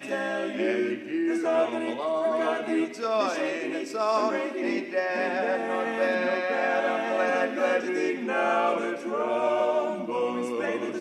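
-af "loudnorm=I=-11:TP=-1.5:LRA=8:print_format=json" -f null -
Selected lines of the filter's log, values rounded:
"input_i" : "-26.9",
"input_tp" : "-11.6",
"input_lra" : "1.6",
"input_thresh" : "-36.9",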